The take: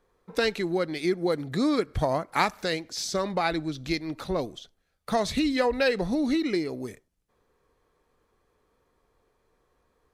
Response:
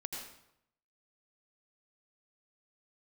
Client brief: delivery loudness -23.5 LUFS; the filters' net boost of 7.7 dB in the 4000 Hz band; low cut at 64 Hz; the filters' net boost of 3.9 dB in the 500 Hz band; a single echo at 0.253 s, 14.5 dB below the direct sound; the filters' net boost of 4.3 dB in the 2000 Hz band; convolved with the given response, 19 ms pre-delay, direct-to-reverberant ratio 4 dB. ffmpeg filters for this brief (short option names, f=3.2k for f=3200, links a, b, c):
-filter_complex "[0:a]highpass=64,equalizer=f=500:t=o:g=4.5,equalizer=f=2k:t=o:g=3,equalizer=f=4k:t=o:g=8,aecho=1:1:253:0.188,asplit=2[a][b];[1:a]atrim=start_sample=2205,adelay=19[c];[b][c]afir=irnorm=-1:irlink=0,volume=-4dB[d];[a][d]amix=inputs=2:normalize=0,volume=-1dB"